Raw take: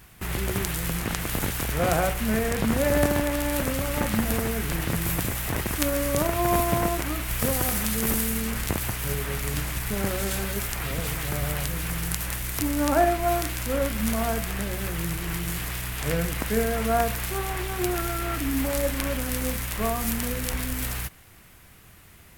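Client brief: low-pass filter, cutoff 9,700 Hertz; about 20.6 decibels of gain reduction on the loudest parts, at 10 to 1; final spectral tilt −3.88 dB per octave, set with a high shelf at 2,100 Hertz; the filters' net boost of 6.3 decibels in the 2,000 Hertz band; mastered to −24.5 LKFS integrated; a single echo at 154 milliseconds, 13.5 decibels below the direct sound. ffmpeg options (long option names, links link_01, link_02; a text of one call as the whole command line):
ffmpeg -i in.wav -af "lowpass=9700,equalizer=frequency=2000:width_type=o:gain=5.5,highshelf=frequency=2100:gain=4,acompressor=threshold=-36dB:ratio=10,aecho=1:1:154:0.211,volume=14.5dB" out.wav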